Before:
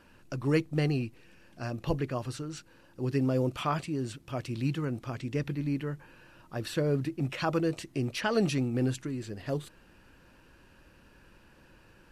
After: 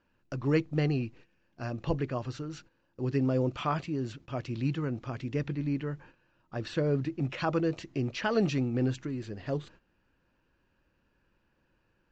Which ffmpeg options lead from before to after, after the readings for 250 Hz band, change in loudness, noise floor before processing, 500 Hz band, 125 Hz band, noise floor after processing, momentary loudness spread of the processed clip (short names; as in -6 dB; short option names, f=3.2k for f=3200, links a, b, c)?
0.0 dB, 0.0 dB, -59 dBFS, 0.0 dB, 0.0 dB, -73 dBFS, 11 LU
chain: -af "aresample=16000,aresample=44100,agate=range=-14dB:threshold=-51dB:ratio=16:detection=peak,highshelf=f=5.6k:g=-9"